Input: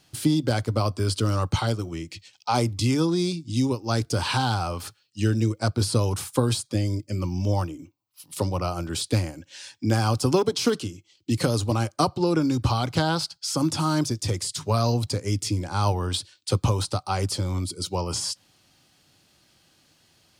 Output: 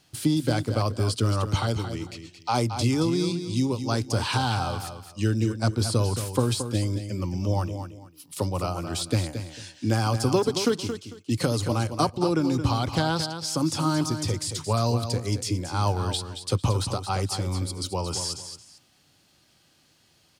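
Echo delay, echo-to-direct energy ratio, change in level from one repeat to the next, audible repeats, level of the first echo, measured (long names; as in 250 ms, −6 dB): 224 ms, −9.0 dB, −12.5 dB, 2, −9.0 dB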